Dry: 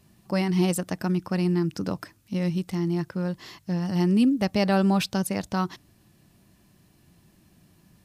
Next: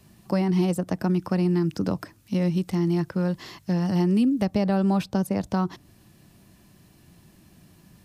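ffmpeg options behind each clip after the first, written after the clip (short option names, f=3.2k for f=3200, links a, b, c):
-filter_complex "[0:a]acrossover=split=230|1100[a][b][c];[a]acompressor=threshold=-29dB:ratio=4[d];[b]acompressor=threshold=-29dB:ratio=4[e];[c]acompressor=threshold=-45dB:ratio=4[f];[d][e][f]amix=inputs=3:normalize=0,volume=4.5dB"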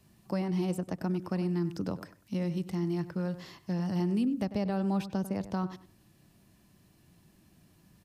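-filter_complex "[0:a]asplit=2[a][b];[b]adelay=97,lowpass=f=2.3k:p=1,volume=-13dB,asplit=2[c][d];[d]adelay=97,lowpass=f=2.3k:p=1,volume=0.24,asplit=2[e][f];[f]adelay=97,lowpass=f=2.3k:p=1,volume=0.24[g];[a][c][e][g]amix=inputs=4:normalize=0,volume=-8dB"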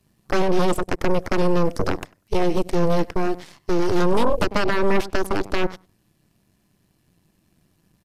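-af "aeval=exprs='0.106*(cos(1*acos(clip(val(0)/0.106,-1,1)))-cos(1*PI/2))+0.0376*(cos(3*acos(clip(val(0)/0.106,-1,1)))-cos(3*PI/2))+0.0531*(cos(6*acos(clip(val(0)/0.106,-1,1)))-cos(6*PI/2))+0.00376*(cos(7*acos(clip(val(0)/0.106,-1,1)))-cos(7*PI/2))':c=same,aresample=32000,aresample=44100,volume=8dB"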